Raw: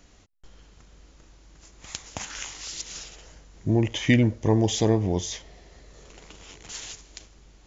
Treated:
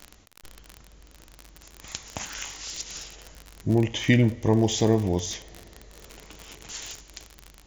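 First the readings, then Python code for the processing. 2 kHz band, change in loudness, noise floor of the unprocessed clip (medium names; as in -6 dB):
0.0 dB, 0.0 dB, -55 dBFS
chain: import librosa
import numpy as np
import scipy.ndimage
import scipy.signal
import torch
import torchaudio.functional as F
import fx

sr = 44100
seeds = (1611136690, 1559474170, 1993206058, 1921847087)

y = fx.rev_double_slope(x, sr, seeds[0], early_s=0.44, late_s=2.8, knee_db=-18, drr_db=13.5)
y = fx.dmg_crackle(y, sr, seeds[1], per_s=45.0, level_db=-27.0)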